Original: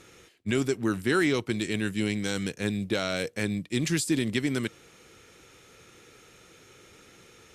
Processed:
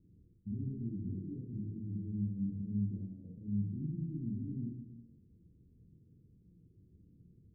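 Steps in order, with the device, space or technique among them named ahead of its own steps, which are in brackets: club heard from the street (limiter -25 dBFS, peak gain reduction 12 dB; LPF 220 Hz 24 dB/oct; reverb RT60 0.90 s, pre-delay 17 ms, DRR -4 dB); gain -5.5 dB

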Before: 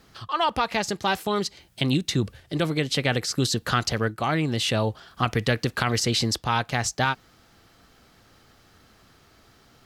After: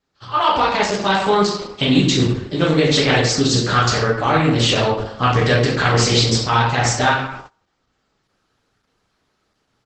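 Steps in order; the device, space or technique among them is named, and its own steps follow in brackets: speakerphone in a meeting room (reverb RT60 0.85 s, pre-delay 8 ms, DRR -6 dB; speakerphone echo 0.12 s, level -22 dB; AGC gain up to 5 dB; gate -35 dBFS, range -22 dB; Opus 12 kbps 48000 Hz)

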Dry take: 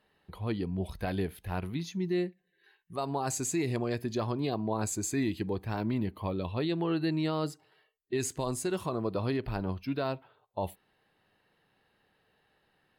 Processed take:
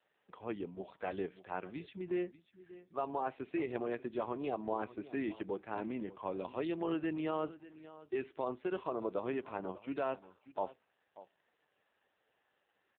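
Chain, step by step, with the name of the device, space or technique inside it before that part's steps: satellite phone (BPF 340–3300 Hz; echo 0.588 s -17 dB; gain -1.5 dB; AMR-NB 5.9 kbps 8000 Hz)

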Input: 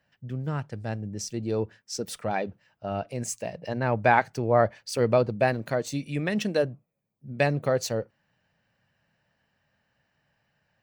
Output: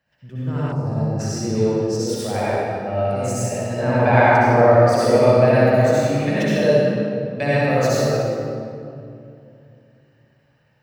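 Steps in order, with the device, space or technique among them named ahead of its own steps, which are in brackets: tunnel (flutter echo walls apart 10.1 m, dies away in 0.48 s; reverb RT60 2.7 s, pre-delay 62 ms, DRR -9.5 dB); 0.72–1.2 band shelf 2300 Hz -14 dB; gain -2.5 dB

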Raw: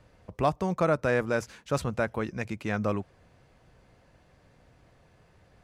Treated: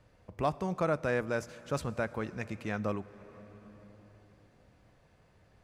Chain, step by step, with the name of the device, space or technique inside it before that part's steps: compressed reverb return (on a send at -7 dB: reverb RT60 2.9 s, pre-delay 21 ms + compressor 6:1, threshold -36 dBFS, peak gain reduction 14 dB); on the sum: gain -5 dB

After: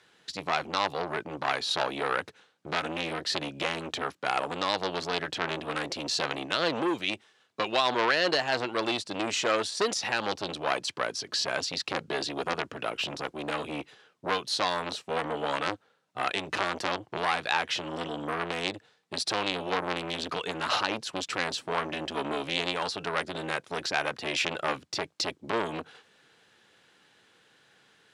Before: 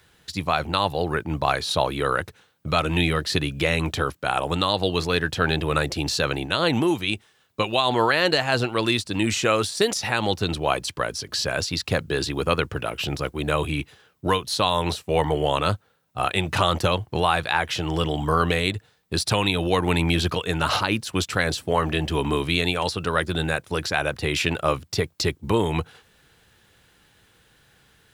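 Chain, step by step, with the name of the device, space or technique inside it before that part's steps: public-address speaker with an overloaded transformer (core saturation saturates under 2000 Hz; BPF 230–7000 Hz); gain -2 dB

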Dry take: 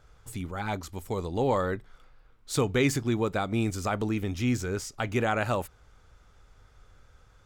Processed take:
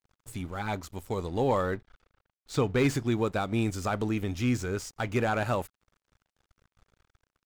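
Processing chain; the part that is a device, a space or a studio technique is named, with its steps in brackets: 1.74–2.78 air absorption 70 m; early transistor amplifier (crossover distortion -51 dBFS; slew limiter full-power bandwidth 98 Hz)

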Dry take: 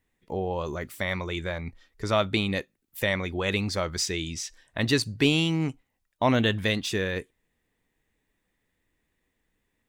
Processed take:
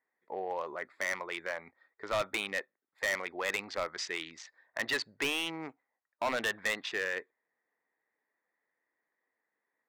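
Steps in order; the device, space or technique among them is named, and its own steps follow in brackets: Wiener smoothing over 15 samples; megaphone (BPF 660–3400 Hz; bell 1900 Hz +5 dB 0.36 oct; hard clip -26 dBFS, distortion -7 dB)

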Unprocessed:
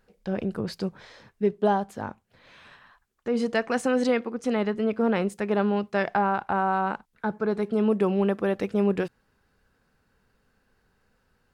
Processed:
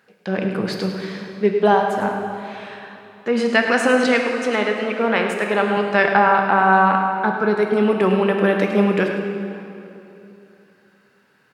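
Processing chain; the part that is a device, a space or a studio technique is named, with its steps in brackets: 4.06–5.77 HPF 380 Hz 6 dB/oct; PA in a hall (HPF 120 Hz 24 dB/oct; bell 2100 Hz +7 dB 1.8 oct; echo 0.105 s -11 dB; reverb RT60 2.9 s, pre-delay 9 ms, DRR 3.5 dB); low shelf 160 Hz -3.5 dB; gain +5.5 dB

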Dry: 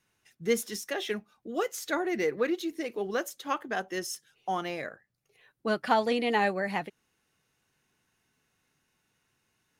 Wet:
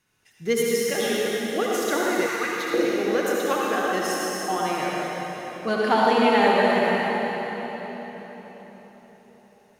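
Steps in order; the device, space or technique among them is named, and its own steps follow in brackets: cathedral (reverb RT60 4.5 s, pre-delay 58 ms, DRR -5 dB); 2.26–2.74 resonant low shelf 780 Hz -8.5 dB, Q 1.5; gain +2.5 dB

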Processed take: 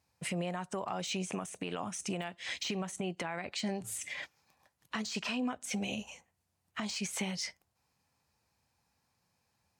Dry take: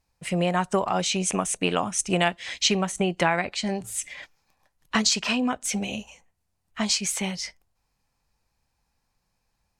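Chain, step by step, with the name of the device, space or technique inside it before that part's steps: podcast mastering chain (HPF 75 Hz 24 dB/oct; de-esser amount 60%; compressor 3:1, threshold -33 dBFS, peak gain reduction 12.5 dB; limiter -25 dBFS, peak gain reduction 9 dB; MP3 128 kbps 44100 Hz)

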